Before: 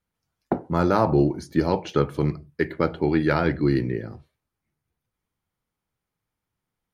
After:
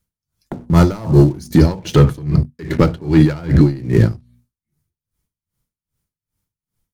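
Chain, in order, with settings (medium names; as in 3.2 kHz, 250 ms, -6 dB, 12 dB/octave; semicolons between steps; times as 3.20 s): band-stop 770 Hz, Q 12; waveshaping leveller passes 2; 1.58–3.79 s: treble shelf 5.1 kHz -5.5 dB; spectral noise reduction 7 dB; tone controls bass +12 dB, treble +12 dB; hum notches 60/120/180/240 Hz; loudness maximiser +13 dB; logarithmic tremolo 2.5 Hz, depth 23 dB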